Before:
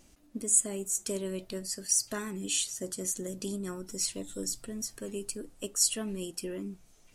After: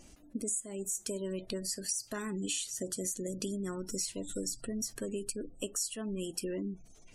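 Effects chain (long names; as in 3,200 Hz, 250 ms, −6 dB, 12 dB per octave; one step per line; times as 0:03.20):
downward compressor 10 to 1, threshold −37 dBFS, peak gain reduction 18.5 dB
0:02.29–0:02.74: dynamic equaliser 1,700 Hz, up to +3 dB, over −57 dBFS, Q 1.6
gate on every frequency bin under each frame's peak −30 dB strong
level +4.5 dB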